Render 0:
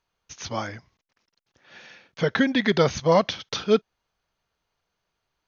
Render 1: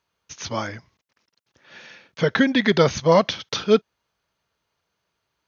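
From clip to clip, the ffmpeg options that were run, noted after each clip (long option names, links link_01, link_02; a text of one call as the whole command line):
ffmpeg -i in.wav -af "highpass=66,bandreject=frequency=750:width=13,volume=3dB" out.wav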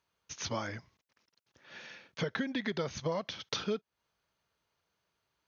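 ffmpeg -i in.wav -af "acompressor=threshold=-26dB:ratio=8,volume=-5dB" out.wav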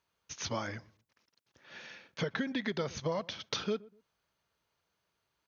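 ffmpeg -i in.wav -filter_complex "[0:a]asplit=2[link_01][link_02];[link_02]adelay=122,lowpass=frequency=800:poles=1,volume=-20.5dB,asplit=2[link_03][link_04];[link_04]adelay=122,lowpass=frequency=800:poles=1,volume=0.3[link_05];[link_01][link_03][link_05]amix=inputs=3:normalize=0" out.wav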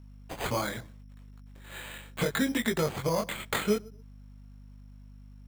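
ffmpeg -i in.wav -af "flanger=delay=17.5:depth=7.1:speed=0.76,aeval=exprs='val(0)+0.00141*(sin(2*PI*50*n/s)+sin(2*PI*2*50*n/s)/2+sin(2*PI*3*50*n/s)/3+sin(2*PI*4*50*n/s)/4+sin(2*PI*5*50*n/s)/5)':channel_layout=same,acrusher=samples=8:mix=1:aa=0.000001,volume=9dB" out.wav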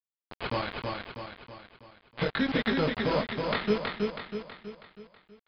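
ffmpeg -i in.wav -filter_complex "[0:a]aeval=exprs='val(0)*gte(abs(val(0)),0.0316)':channel_layout=same,asplit=2[link_01][link_02];[link_02]aecho=0:1:323|646|969|1292|1615|1938:0.668|0.327|0.16|0.0786|0.0385|0.0189[link_03];[link_01][link_03]amix=inputs=2:normalize=0,aresample=11025,aresample=44100" out.wav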